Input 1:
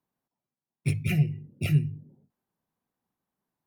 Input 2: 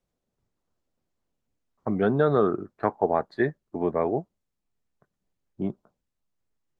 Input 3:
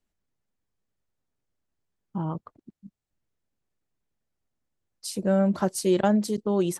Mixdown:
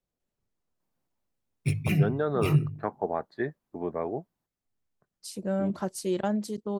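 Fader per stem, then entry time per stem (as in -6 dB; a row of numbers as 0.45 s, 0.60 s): -0.5 dB, -6.5 dB, -6.5 dB; 0.80 s, 0.00 s, 0.20 s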